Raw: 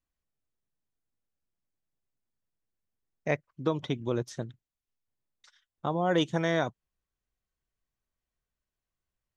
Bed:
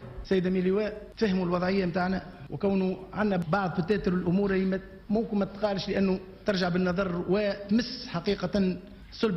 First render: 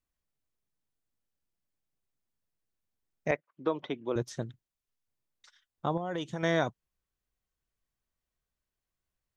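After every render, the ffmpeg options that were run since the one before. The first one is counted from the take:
ffmpeg -i in.wav -filter_complex "[0:a]asettb=1/sr,asplit=3[link_01][link_02][link_03];[link_01]atrim=end=3.314[link_04];[link_02]atrim=start=3.31:end=4.16,asetpts=PTS-STARTPTS,afade=type=in:duration=0.004:curve=qsin,afade=type=out:start_time=0.846:duration=0.004:curve=qsin,highpass=310,lowpass=2900[link_05];[link_03]atrim=start=4.156[link_06];[link_04][link_05]acrossfade=duration=0.004:curve1=hsin:curve2=qsin[link_07];[link_07][link_06]acrossfade=duration=0.004:curve1=qsin:curve2=hsin,asettb=1/sr,asplit=3[link_08][link_09][link_10];[link_08]atrim=end=5.974[link_11];[link_09]atrim=start=5.97:end=6.43,asetpts=PTS-STARTPTS,afade=type=in:duration=0.004:curve=qsin,afade=type=out:start_time=0.456:duration=0.004:curve=qsin,acompressor=threshold=-33dB:ratio=3:attack=3.2:release=140:knee=1:detection=peak[link_12];[link_10]atrim=start=6.426[link_13];[link_11][link_12]acrossfade=duration=0.004:curve1=hsin:curve2=qsin[link_14];[link_14][link_13]acrossfade=duration=0.004:curve1=qsin:curve2=hsin" out.wav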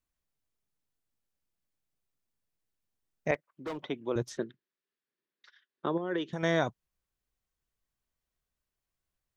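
ffmpeg -i in.wav -filter_complex "[0:a]asettb=1/sr,asplit=3[link_01][link_02][link_03];[link_01]atrim=end=3.344[link_04];[link_02]atrim=start=3.34:end=3.83,asetpts=PTS-STARTPTS,afade=type=in:duration=0.004:curve=qsin,afade=type=out:start_time=0.486:duration=0.004:curve=qsin,asoftclip=type=hard:threshold=-33dB[link_05];[link_03]atrim=start=3.826[link_06];[link_04][link_05]acrossfade=duration=0.004:curve1=hsin:curve2=qsin[link_07];[link_07][link_06]acrossfade=duration=0.004:curve1=qsin:curve2=hsin,asettb=1/sr,asplit=3[link_08][link_09][link_10];[link_08]atrim=end=4.374[link_11];[link_09]atrim=start=4.37:end=6.33,asetpts=PTS-STARTPTS,afade=type=in:duration=0.004:curve=qsin,afade=type=out:start_time=1.956:duration=0.004:curve=qsin,highpass=frequency=180:width=0.5412,highpass=frequency=180:width=1.3066,equalizer=frequency=380:width_type=q:width=4:gain=10,equalizer=frequency=750:width_type=q:width=4:gain=-9,equalizer=frequency=1700:width_type=q:width=4:gain=7,lowpass=frequency=4600:width=0.5412,lowpass=frequency=4600:width=1.3066[link_12];[link_10]atrim=start=6.326[link_13];[link_11][link_12]acrossfade=duration=0.004:curve1=hsin:curve2=qsin[link_14];[link_14][link_13]acrossfade=duration=0.004:curve1=qsin:curve2=hsin" out.wav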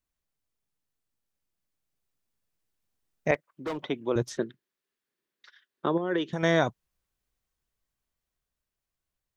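ffmpeg -i in.wav -af "dynaudnorm=framelen=470:gausssize=9:maxgain=4.5dB" out.wav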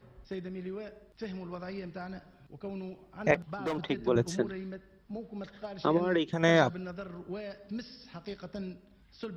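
ffmpeg -i in.wav -i bed.wav -filter_complex "[1:a]volume=-13.5dB[link_01];[0:a][link_01]amix=inputs=2:normalize=0" out.wav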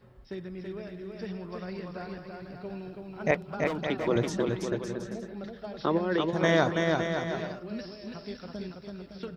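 ffmpeg -i in.wav -af "aecho=1:1:330|561|722.7|835.9|915.1:0.631|0.398|0.251|0.158|0.1" out.wav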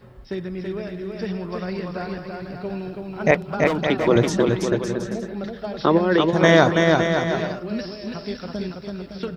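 ffmpeg -i in.wav -af "volume=9.5dB,alimiter=limit=-1dB:level=0:latency=1" out.wav

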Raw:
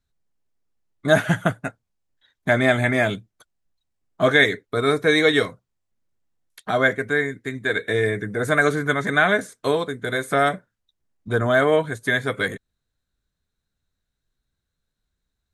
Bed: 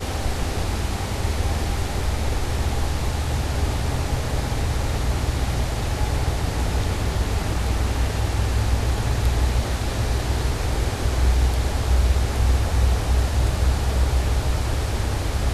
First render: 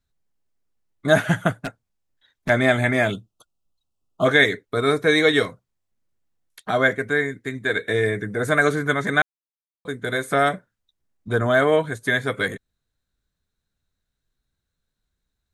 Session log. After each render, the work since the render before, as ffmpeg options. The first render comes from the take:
ffmpeg -i in.wav -filter_complex "[0:a]asplit=3[link_01][link_02][link_03];[link_01]afade=type=out:start_time=1.51:duration=0.02[link_04];[link_02]aeval=exprs='0.0944*(abs(mod(val(0)/0.0944+3,4)-2)-1)':channel_layout=same,afade=type=in:start_time=1.51:duration=0.02,afade=type=out:start_time=2.48:duration=0.02[link_05];[link_03]afade=type=in:start_time=2.48:duration=0.02[link_06];[link_04][link_05][link_06]amix=inputs=3:normalize=0,asplit=3[link_07][link_08][link_09];[link_07]afade=type=out:start_time=3.11:duration=0.02[link_10];[link_08]asuperstop=centerf=1900:order=20:qfactor=1.7,afade=type=in:start_time=3.11:duration=0.02,afade=type=out:start_time=4.24:duration=0.02[link_11];[link_09]afade=type=in:start_time=4.24:duration=0.02[link_12];[link_10][link_11][link_12]amix=inputs=3:normalize=0,asplit=3[link_13][link_14][link_15];[link_13]atrim=end=9.22,asetpts=PTS-STARTPTS,afade=type=out:start_time=9.216:duration=0.004:curve=hsin[link_16];[link_14]atrim=start=9.22:end=9.85,asetpts=PTS-STARTPTS,volume=0[link_17];[link_15]atrim=start=9.85,asetpts=PTS-STARTPTS,afade=type=in:duration=0.004:curve=hsin[link_18];[link_16][link_17][link_18]concat=n=3:v=0:a=1" out.wav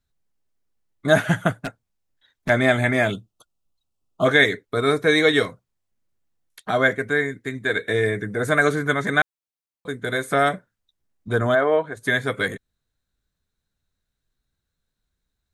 ffmpeg -i in.wav -filter_complex "[0:a]asplit=3[link_01][link_02][link_03];[link_01]afade=type=out:start_time=11.54:duration=0.02[link_04];[link_02]bandpass=frequency=730:width_type=q:width=0.64,afade=type=in:start_time=11.54:duration=0.02,afade=type=out:start_time=11.96:duration=0.02[link_05];[link_03]afade=type=in:start_time=11.96:duration=0.02[link_06];[link_04][link_05][link_06]amix=inputs=3:normalize=0" out.wav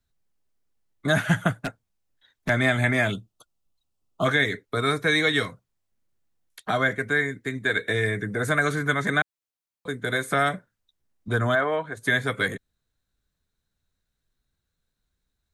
ffmpeg -i in.wav -filter_complex "[0:a]acrossover=split=240|810[link_01][link_02][link_03];[link_02]acompressor=threshold=-30dB:ratio=6[link_04];[link_03]alimiter=limit=-12.5dB:level=0:latency=1:release=123[link_05];[link_01][link_04][link_05]amix=inputs=3:normalize=0" out.wav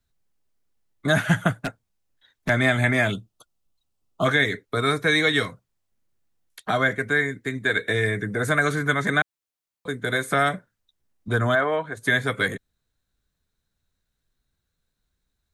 ffmpeg -i in.wav -af "volume=1.5dB" out.wav

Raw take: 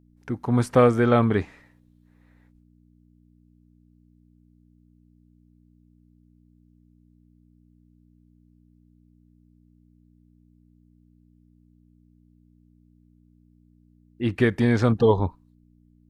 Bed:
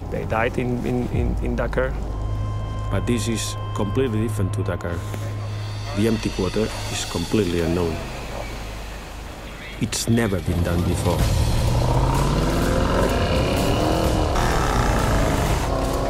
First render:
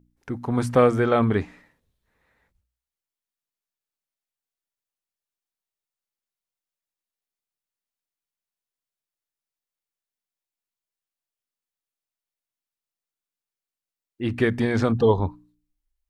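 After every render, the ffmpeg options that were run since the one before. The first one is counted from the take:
ffmpeg -i in.wav -af "bandreject=frequency=60:width_type=h:width=4,bandreject=frequency=120:width_type=h:width=4,bandreject=frequency=180:width_type=h:width=4,bandreject=frequency=240:width_type=h:width=4,bandreject=frequency=300:width_type=h:width=4" out.wav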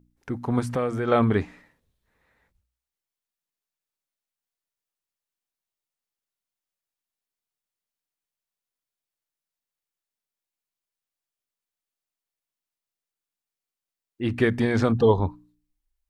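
ffmpeg -i in.wav -filter_complex "[0:a]asplit=3[link_01][link_02][link_03];[link_01]afade=type=out:start_time=0.59:duration=0.02[link_04];[link_02]acompressor=threshold=-28dB:ratio=2:attack=3.2:release=140:knee=1:detection=peak,afade=type=in:start_time=0.59:duration=0.02,afade=type=out:start_time=1.07:duration=0.02[link_05];[link_03]afade=type=in:start_time=1.07:duration=0.02[link_06];[link_04][link_05][link_06]amix=inputs=3:normalize=0" out.wav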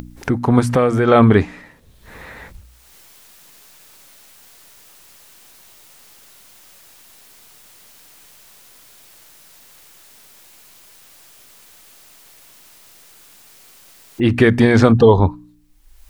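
ffmpeg -i in.wav -filter_complex "[0:a]asplit=2[link_01][link_02];[link_02]acompressor=mode=upward:threshold=-21dB:ratio=2.5,volume=0dB[link_03];[link_01][link_03]amix=inputs=2:normalize=0,alimiter=level_in=4.5dB:limit=-1dB:release=50:level=0:latency=1" out.wav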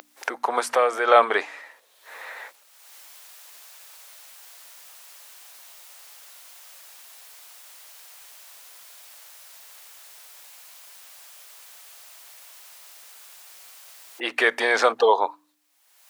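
ffmpeg -i in.wav -af "highpass=frequency=560:width=0.5412,highpass=frequency=560:width=1.3066" out.wav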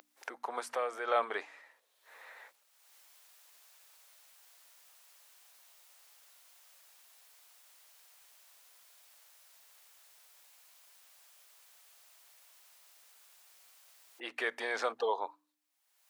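ffmpeg -i in.wav -af "volume=-14.5dB" out.wav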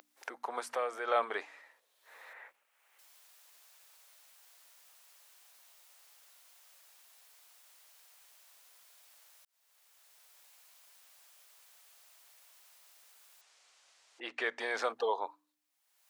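ffmpeg -i in.wav -filter_complex "[0:a]asettb=1/sr,asplit=3[link_01][link_02][link_03];[link_01]atrim=end=2.334[link_04];[link_02]atrim=start=2.33:end=2.99,asetpts=PTS-STARTPTS,afade=type=in:duration=0.004:curve=qsin,afade=type=out:start_time=0.656:duration=0.004:curve=qsin,highshelf=frequency=3200:width_type=q:width=1.5:gain=-9[link_05];[link_03]atrim=start=2.986[link_06];[link_04][link_05]acrossfade=duration=0.004:curve1=hsin:curve2=qsin[link_07];[link_07][link_06]acrossfade=duration=0.004:curve1=qsin:curve2=hsin,asettb=1/sr,asplit=3[link_08][link_09][link_10];[link_08]atrim=end=13.414[link_11];[link_09]atrim=start=13.41:end=14.6,asetpts=PTS-STARTPTS,afade=type=in:duration=0.004:curve=qsin,afade=type=out:start_time=1.186:duration=0.004:curve=qsin,lowpass=frequency=7600:width=0.5412,lowpass=frequency=7600:width=1.3066[link_12];[link_10]atrim=start=14.596[link_13];[link_11][link_12]acrossfade=duration=0.004:curve1=hsin:curve2=qsin[link_14];[link_14][link_13]acrossfade=duration=0.004:curve1=qsin:curve2=hsin,asplit=2[link_15][link_16];[link_15]atrim=end=9.45,asetpts=PTS-STARTPTS,afade=type=out:start_time=9.446:duration=0.004:curve=hsin[link_17];[link_16]atrim=start=9.45,asetpts=PTS-STARTPTS,afade=type=in:duration=1.12:curve=qsin[link_18];[link_17][link_18]concat=n=2:v=0:a=1" out.wav

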